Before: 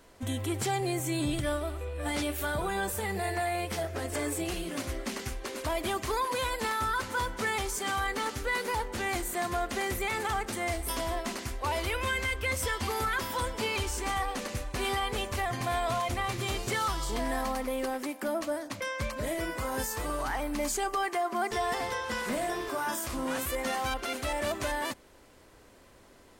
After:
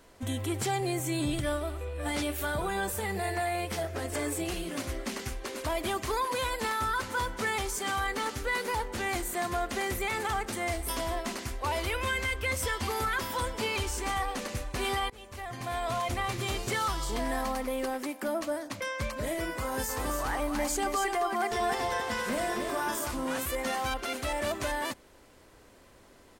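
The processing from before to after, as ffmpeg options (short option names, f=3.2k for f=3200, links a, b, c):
-filter_complex "[0:a]asplit=3[a][b][c];[a]afade=t=out:st=19.88:d=0.02[d];[b]aecho=1:1:275:0.531,afade=t=in:st=19.88:d=0.02,afade=t=out:st=23.1:d=0.02[e];[c]afade=t=in:st=23.1:d=0.02[f];[d][e][f]amix=inputs=3:normalize=0,asplit=2[g][h];[g]atrim=end=15.1,asetpts=PTS-STARTPTS,afade=t=out:st=15.096:d=0.004:c=hsin:silence=0.0707946[i];[h]atrim=start=15.1,asetpts=PTS-STARTPTS,afade=t=in:d=0.99:silence=0.0707946[j];[i][j]concat=n=2:v=0:a=1"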